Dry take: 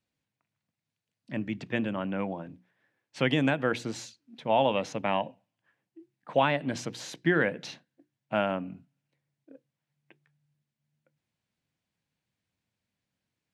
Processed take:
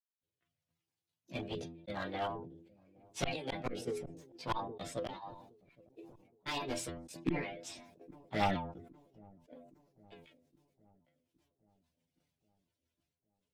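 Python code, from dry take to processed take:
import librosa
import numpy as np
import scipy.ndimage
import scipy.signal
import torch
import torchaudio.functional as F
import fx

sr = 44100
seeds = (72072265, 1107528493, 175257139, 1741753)

p1 = fx.transient(x, sr, attack_db=5, sustain_db=-3)
p2 = fx.step_gate(p1, sr, bpm=72, pattern='.xxxxxxx.xx', floor_db=-60.0, edge_ms=4.5)
p3 = fx.stiff_resonator(p2, sr, f0_hz=82.0, decay_s=0.23, stiffness=0.002)
p4 = fx.gate_flip(p3, sr, shuts_db=-21.0, range_db=-34)
p5 = fx.rotary_switch(p4, sr, hz=0.85, then_hz=7.0, switch_at_s=7.03)
p6 = fx.clip_asym(p5, sr, top_db=-36.5, bottom_db=-24.5)
p7 = fx.chorus_voices(p6, sr, voices=4, hz=0.4, base_ms=16, depth_ms=1.6, mix_pct=70)
p8 = fx.formant_shift(p7, sr, semitones=5)
p9 = p8 + fx.echo_wet_lowpass(p8, sr, ms=816, feedback_pct=53, hz=470.0, wet_db=-21, dry=0)
p10 = fx.sustainer(p9, sr, db_per_s=65.0)
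y = p10 * librosa.db_to_amplitude(7.0)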